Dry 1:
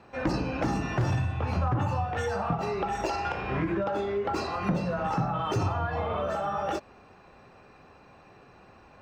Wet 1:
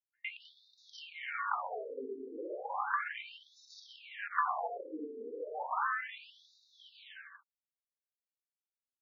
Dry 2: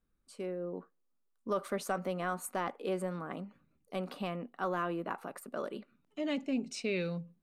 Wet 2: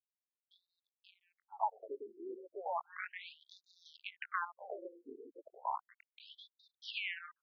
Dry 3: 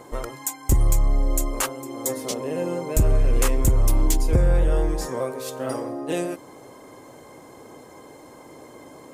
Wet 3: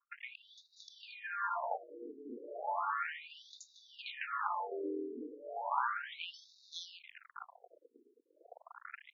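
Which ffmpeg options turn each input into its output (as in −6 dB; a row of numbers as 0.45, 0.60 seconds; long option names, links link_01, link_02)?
-filter_complex "[0:a]asplit=2[link_01][link_02];[link_02]acompressor=threshold=-34dB:ratio=6,volume=1dB[link_03];[link_01][link_03]amix=inputs=2:normalize=0,lowshelf=frequency=690:width_type=q:width=1.5:gain=-10.5,bandreject=frequency=50:width_type=h:width=6,bandreject=frequency=100:width_type=h:width=6,bandreject=frequency=150:width_type=h:width=6,bandreject=frequency=200:width_type=h:width=6,bandreject=frequency=250:width_type=h:width=6,bandreject=frequency=300:width_type=h:width=6,bandreject=frequency=350:width_type=h:width=6,bandreject=frequency=400:width_type=h:width=6,bandreject=frequency=450:width_type=h:width=6,anlmdn=0.631,aeval=exprs='val(0)*sin(2*PI*350*n/s)':channel_layout=same,aeval=exprs='sgn(val(0))*max(abs(val(0))-0.00562,0)':channel_layout=same,firequalizer=gain_entry='entry(620,0);entry(1000,8);entry(10000,-23)':delay=0.05:min_phase=1,acrossover=split=400|3600[link_04][link_05][link_06];[link_05]adelay=110[link_07];[link_06]adelay=640[link_08];[link_04][link_07][link_08]amix=inputs=3:normalize=0,acrossover=split=150|860[link_09][link_10][link_11];[link_09]acompressor=threshold=-54dB:ratio=4[link_12];[link_10]acompressor=threshold=-44dB:ratio=4[link_13];[link_11]acompressor=threshold=-43dB:ratio=4[link_14];[link_12][link_13][link_14]amix=inputs=3:normalize=0,afftfilt=real='re*between(b*sr/1024,330*pow(5100/330,0.5+0.5*sin(2*PI*0.34*pts/sr))/1.41,330*pow(5100/330,0.5+0.5*sin(2*PI*0.34*pts/sr))*1.41)':imag='im*between(b*sr/1024,330*pow(5100/330,0.5+0.5*sin(2*PI*0.34*pts/sr))/1.41,330*pow(5100/330,0.5+0.5*sin(2*PI*0.34*pts/sr))*1.41)':win_size=1024:overlap=0.75,volume=9dB"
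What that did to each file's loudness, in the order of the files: −8.5, −5.5, −16.0 LU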